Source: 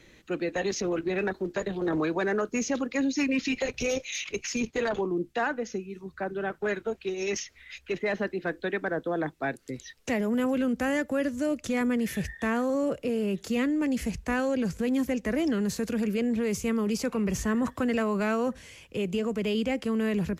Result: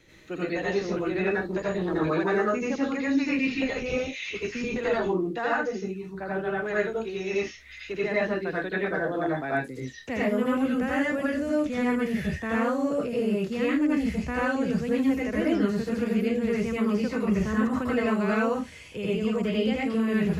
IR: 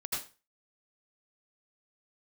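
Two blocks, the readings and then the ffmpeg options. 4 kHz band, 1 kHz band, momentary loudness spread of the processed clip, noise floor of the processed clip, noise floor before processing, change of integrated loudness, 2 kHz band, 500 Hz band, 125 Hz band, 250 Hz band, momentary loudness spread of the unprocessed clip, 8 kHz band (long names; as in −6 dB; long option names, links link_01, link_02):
−0.5 dB, +3.0 dB, 6 LU, −44 dBFS, −57 dBFS, +2.0 dB, +3.0 dB, +2.0 dB, +3.5 dB, +2.0 dB, 6 LU, −9.5 dB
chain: -filter_complex "[0:a]acrossover=split=3300[link_01][link_02];[link_02]alimiter=level_in=11.5dB:limit=-24dB:level=0:latency=1,volume=-11.5dB[link_03];[link_01][link_03]amix=inputs=2:normalize=0[link_04];[1:a]atrim=start_sample=2205,afade=type=out:start_time=0.21:duration=0.01,atrim=end_sample=9702[link_05];[link_04][link_05]afir=irnorm=-1:irlink=0,acrossover=split=4300[link_06][link_07];[link_07]acompressor=threshold=-54dB:ratio=4:attack=1:release=60[link_08];[link_06][link_08]amix=inputs=2:normalize=0"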